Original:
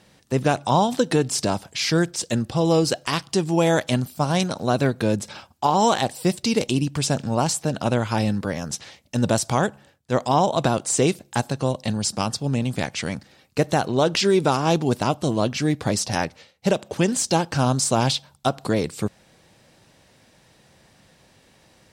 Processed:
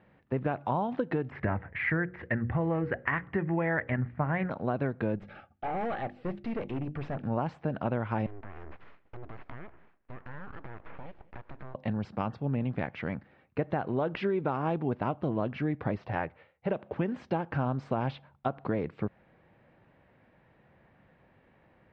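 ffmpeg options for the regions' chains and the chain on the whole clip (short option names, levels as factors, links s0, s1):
-filter_complex "[0:a]asettb=1/sr,asplit=3[s0][s1][s2];[s0]atrim=end=1.314[s3];[s1]atrim=start=1.31:end=4.5,asetpts=PTS-STARTPTS,afade=t=in:d=0.004:c=qsin,afade=t=out:st=3.186:d=0.004:c=qsin,lowpass=f=1900:t=q:w=6,equalizer=f=78:w=1.2:g=14,bandreject=f=60:t=h:w=6,bandreject=f=120:t=h:w=6,bandreject=f=180:t=h:w=6,bandreject=f=240:t=h:w=6,bandreject=f=300:t=h:w=6,bandreject=f=360:t=h:w=6,bandreject=f=420:t=h:w=6,bandreject=f=480:t=h:w=6,bandreject=f=540:t=h:w=6[s4];[s2]atrim=start=4.496[s5];[s3][s4]acrossfade=d=0.004:c1=hsin:c2=qsin[s6];[s6][s5]acrossfade=d=0.004:c1=qsin:c2=hsin,asettb=1/sr,asplit=3[s7][s8][s9];[s7]atrim=end=5.164[s10];[s8]atrim=start=5.16:end=7.23,asetpts=PTS-STARTPTS,afade=t=in:d=0.004:c=qsin,afade=t=out:st=2.066:d=0.004:c=qsin,asuperstop=centerf=1000:order=20:qfactor=3.7,bandreject=f=50:t=h:w=6,bandreject=f=100:t=h:w=6,bandreject=f=150:t=h:w=6,bandreject=f=200:t=h:w=6,bandreject=f=250:t=h:w=6,bandreject=f=300:t=h:w=6,bandreject=f=350:t=h:w=6,aeval=exprs='(tanh(15.8*val(0)+0.45)-tanh(0.45))/15.8':c=same[s11];[s9]atrim=start=7.226[s12];[s10][s11]acrossfade=d=0.004:c1=hsin:c2=qsin[s13];[s13][s12]acrossfade=d=0.004:c1=qsin:c2=hsin,asettb=1/sr,asplit=3[s14][s15][s16];[s14]atrim=end=8.264[s17];[s15]atrim=start=8.26:end=11.75,asetpts=PTS-STARTPTS,afade=t=in:d=0.004:c=qsin,afade=t=out:st=3.486:d=0.004:c=qsin,acompressor=threshold=0.0251:ratio=8:attack=3.2:release=140:knee=1:detection=peak,aeval=exprs='abs(val(0))':c=same,aecho=1:1:196:0.0794,atrim=end_sample=153909[s18];[s16]atrim=start=11.746[s19];[s17][s18]acrossfade=d=0.004:c1=hsin:c2=qsin[s20];[s20][s19]acrossfade=d=0.004:c1=qsin:c2=hsin,asettb=1/sr,asplit=3[s21][s22][s23];[s21]atrim=end=15.954[s24];[s22]atrim=start=15.95:end=16.71,asetpts=PTS-STARTPTS,afade=t=in:d=0.004:c=qsin,afade=t=out:st=0.756:d=0.004:c=qsin,lowpass=4300,equalizer=f=220:w=2.9:g=-9[s25];[s23]atrim=start=16.706[s26];[s24][s25]acrossfade=d=0.004:c1=hsin:c2=qsin[s27];[s27][s26]acrossfade=d=0.004:c1=qsin:c2=hsin,lowpass=f=2200:w=0.5412,lowpass=f=2200:w=1.3066,acompressor=threshold=0.1:ratio=6,volume=0.531"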